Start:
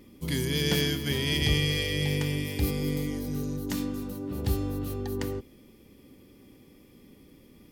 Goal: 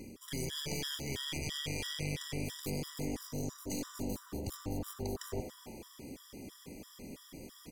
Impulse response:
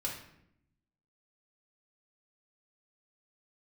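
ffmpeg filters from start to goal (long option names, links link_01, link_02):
-filter_complex "[0:a]equalizer=frequency=6800:width=1.1:gain=12,areverse,acompressor=threshold=-39dB:ratio=5,areverse,asplit=8[link_01][link_02][link_03][link_04][link_05][link_06][link_07][link_08];[link_02]adelay=94,afreqshift=120,volume=-13dB[link_09];[link_03]adelay=188,afreqshift=240,volume=-17.3dB[link_10];[link_04]adelay=282,afreqshift=360,volume=-21.6dB[link_11];[link_05]adelay=376,afreqshift=480,volume=-25.9dB[link_12];[link_06]adelay=470,afreqshift=600,volume=-30.2dB[link_13];[link_07]adelay=564,afreqshift=720,volume=-34.5dB[link_14];[link_08]adelay=658,afreqshift=840,volume=-38.8dB[link_15];[link_01][link_09][link_10][link_11][link_12][link_13][link_14][link_15]amix=inputs=8:normalize=0,aeval=exprs='clip(val(0),-1,0.00531)':channel_layout=same,afftfilt=real='re*gt(sin(2*PI*3*pts/sr)*(1-2*mod(floor(b*sr/1024/980),2)),0)':imag='im*gt(sin(2*PI*3*pts/sr)*(1-2*mod(floor(b*sr/1024/980),2)),0)':win_size=1024:overlap=0.75,volume=6.5dB"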